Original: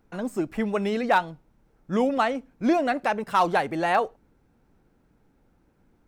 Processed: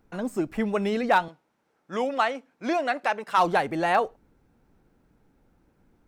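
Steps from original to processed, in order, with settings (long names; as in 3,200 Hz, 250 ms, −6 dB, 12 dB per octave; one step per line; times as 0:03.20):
0:01.28–0:03.38: meter weighting curve A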